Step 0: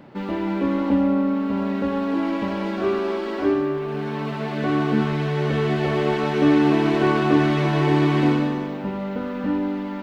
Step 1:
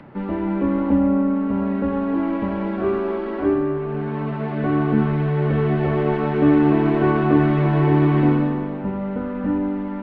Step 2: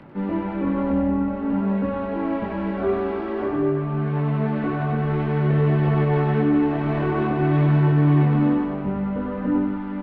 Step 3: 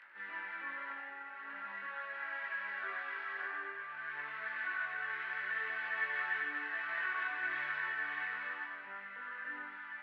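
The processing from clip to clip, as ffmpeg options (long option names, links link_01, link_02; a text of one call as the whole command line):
ffmpeg -i in.wav -filter_complex "[0:a]lowpass=1900,lowshelf=frequency=120:gain=10,acrossover=split=250|970[link_01][link_02][link_03];[link_03]acompressor=mode=upward:threshold=-48dB:ratio=2.5[link_04];[link_01][link_02][link_04]amix=inputs=3:normalize=0" out.wav
ffmpeg -i in.wav -filter_complex "[0:a]alimiter=limit=-14dB:level=0:latency=1:release=11,flanger=delay=19.5:depth=6.2:speed=0.51,asplit=2[link_01][link_02];[link_02]aecho=0:1:96|192|288|384|480|576|672|768:0.501|0.291|0.169|0.0978|0.0567|0.0329|0.0191|0.0111[link_03];[link_01][link_03]amix=inputs=2:normalize=0,volume=1.5dB" out.wav
ffmpeg -i in.wav -af "highpass=frequency=1700:width_type=q:width=5.1,flanger=delay=19.5:depth=3.4:speed=0.43,volume=-6.5dB" out.wav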